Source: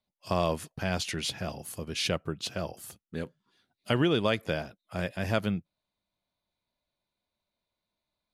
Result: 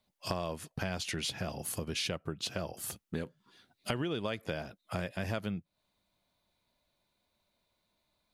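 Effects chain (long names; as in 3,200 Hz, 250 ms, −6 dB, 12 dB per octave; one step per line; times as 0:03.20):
downward compressor 5 to 1, threshold −41 dBFS, peak gain reduction 18 dB
level +7.5 dB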